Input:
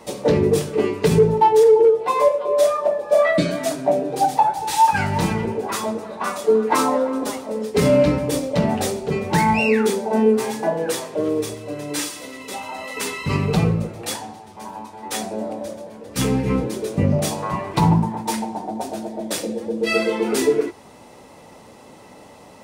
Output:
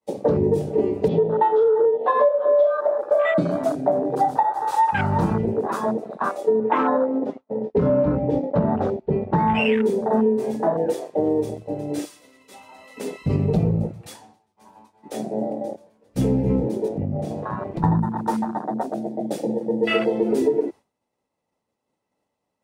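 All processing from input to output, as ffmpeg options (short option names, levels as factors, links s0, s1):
-filter_complex "[0:a]asettb=1/sr,asplit=3[s0][s1][s2];[s0]atrim=end=1.084[s3];[s1]atrim=start=1.08:end=2.81,asetpts=PTS-STARTPTS,afade=t=in:d=0.004:c=qsin,afade=t=out:st=1.726:d=0.004:c=qsin,acontrast=24,highpass=300,equalizer=f=400:t=q:w=4:g=-7,equalizer=f=590:t=q:w=4:g=6,equalizer=f=890:t=q:w=4:g=-5,equalizer=f=1600:t=q:w=4:g=-10,equalizer=f=2300:t=q:w=4:g=-5,equalizer=f=3400:t=q:w=4:g=7,lowpass=f=3800:w=0.5412,lowpass=f=3800:w=1.3066[s4];[s2]atrim=start=2.806[s5];[s3][s4]acrossfade=d=0.004:c1=hsin:c2=qsin[s6];[s6][s5]acrossfade=d=0.004:c1=qsin:c2=hsin,asettb=1/sr,asplit=3[s7][s8][s9];[s7]atrim=end=6.604[s10];[s8]atrim=start=6.6:end=9.55,asetpts=PTS-STARTPTS,afade=t=in:d=0.004:c=qsin,afade=t=out:st=2.946:d=0.004:c=qsin,agate=range=0.0224:threshold=0.0708:ratio=3:release=100:detection=peak,lowpass=2600[s11];[s9]atrim=start=9.546[s12];[s10][s11]acrossfade=d=0.004:c1=hsin:c2=qsin[s13];[s13][s12]acrossfade=d=0.004:c1=qsin:c2=hsin,asettb=1/sr,asplit=3[s14][s15][s16];[s14]atrim=end=16.884[s17];[s15]atrim=start=16.88:end=17.84,asetpts=PTS-STARTPTS,afade=t=in:d=0.004:c=qsin,afade=t=out:st=0.956:d=0.004:c=qsin,highshelf=f=6000:g=-9.5,acompressor=threshold=0.0631:ratio=4:attack=3.2:release=140:knee=1:detection=peak,aeval=exprs='clip(val(0),-1,0.0631)':c=same[s18];[s16]atrim=start=17.836[s19];[s17][s18]acrossfade=d=0.004:c1=hsin:c2=qsin[s20];[s20][s19]acrossfade=d=0.004:c1=qsin:c2=hsin,agate=range=0.0224:threshold=0.0282:ratio=3:detection=peak,afwtdn=0.0794,acompressor=threshold=0.126:ratio=6,volume=1.33"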